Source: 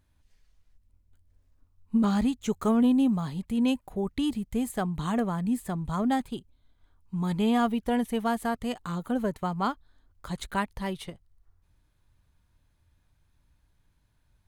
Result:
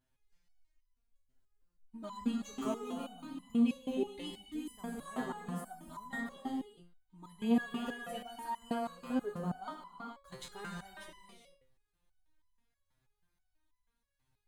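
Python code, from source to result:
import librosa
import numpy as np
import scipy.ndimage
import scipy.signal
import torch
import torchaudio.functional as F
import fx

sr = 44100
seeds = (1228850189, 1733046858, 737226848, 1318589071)

y = fx.low_shelf(x, sr, hz=130.0, db=-5.0)
y = fx.rev_gated(y, sr, seeds[0], gate_ms=470, shape='flat', drr_db=1.5)
y = fx.resonator_held(y, sr, hz=6.2, low_hz=130.0, high_hz=1000.0)
y = y * librosa.db_to_amplitude(2.5)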